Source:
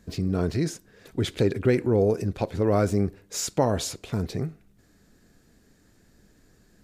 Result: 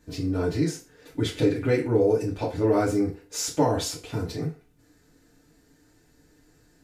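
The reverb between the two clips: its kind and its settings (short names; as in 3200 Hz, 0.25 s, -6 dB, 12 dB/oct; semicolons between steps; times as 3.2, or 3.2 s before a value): FDN reverb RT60 0.31 s, low-frequency decay 0.75×, high-frequency decay 0.95×, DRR -5.5 dB; gain -6 dB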